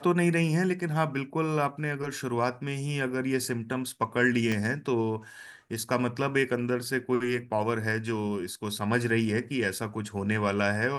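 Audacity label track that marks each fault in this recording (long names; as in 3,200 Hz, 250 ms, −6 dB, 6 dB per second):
4.520000	4.520000	click −17 dBFS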